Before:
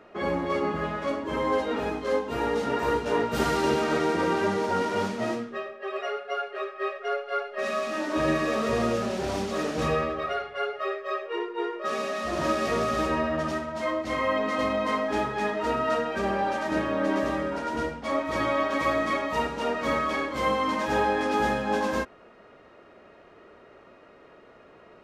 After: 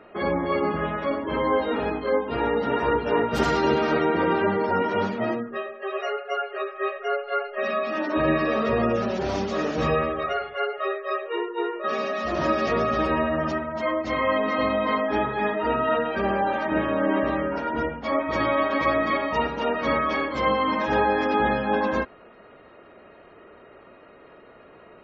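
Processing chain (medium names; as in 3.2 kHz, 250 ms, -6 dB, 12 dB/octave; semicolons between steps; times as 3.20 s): spectral gate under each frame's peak -30 dB strong; trim +3 dB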